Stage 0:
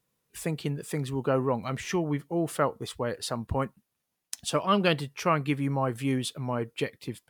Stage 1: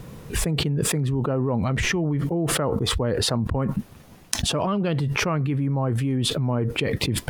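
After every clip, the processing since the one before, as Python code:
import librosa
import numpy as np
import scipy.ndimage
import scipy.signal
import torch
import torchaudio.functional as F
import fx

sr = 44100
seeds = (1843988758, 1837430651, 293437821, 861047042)

y = fx.tilt_eq(x, sr, slope=-3.0)
y = fx.env_flatten(y, sr, amount_pct=100)
y = y * librosa.db_to_amplitude(-6.0)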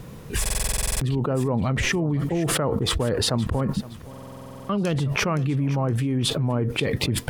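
y = fx.echo_feedback(x, sr, ms=518, feedback_pct=36, wet_db=-17.5)
y = fx.buffer_glitch(y, sr, at_s=(0.41, 4.09), block=2048, repeats=12)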